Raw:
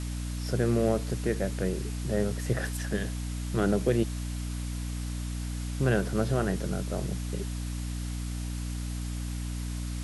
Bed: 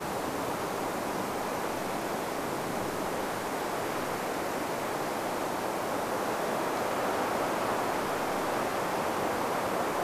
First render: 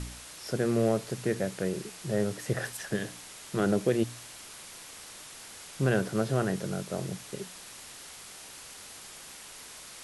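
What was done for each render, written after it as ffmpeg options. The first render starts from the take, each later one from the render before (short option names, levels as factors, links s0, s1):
-af "bandreject=f=60:t=h:w=4,bandreject=f=120:t=h:w=4,bandreject=f=180:t=h:w=4,bandreject=f=240:t=h:w=4,bandreject=f=300:t=h:w=4"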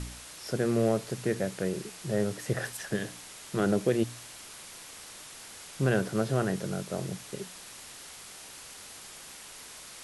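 -af anull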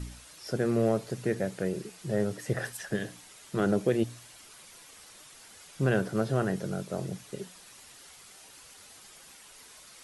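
-af "afftdn=nr=8:nf=-47"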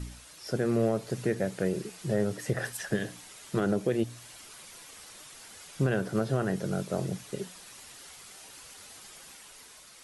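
-af "dynaudnorm=f=130:g=11:m=1.41,alimiter=limit=0.141:level=0:latency=1:release=279"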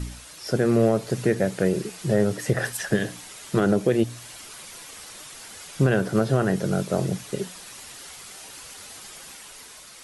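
-af "volume=2.24"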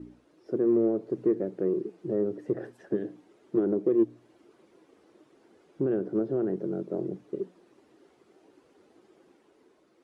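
-filter_complex "[0:a]bandpass=f=340:t=q:w=3.9:csg=0,asplit=2[s0][s1];[s1]asoftclip=type=tanh:threshold=0.0631,volume=0.266[s2];[s0][s2]amix=inputs=2:normalize=0"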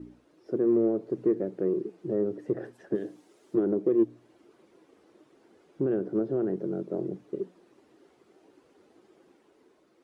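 -filter_complex "[0:a]asettb=1/sr,asplit=3[s0][s1][s2];[s0]atrim=end=2.954[s3];[s1]atrim=start=2.95:end=3.55,asetpts=PTS-STARTPTS,afade=t=in:d=0.004:c=qsin,afade=t=out:st=0.596:d=0.004:c=qsin,bass=f=250:g=-5,treble=f=4000:g=10[s4];[s2]atrim=start=3.546[s5];[s3][s4]acrossfade=d=0.004:c1=hsin:c2=qsin[s6];[s6][s5]acrossfade=d=0.004:c1=qsin:c2=hsin"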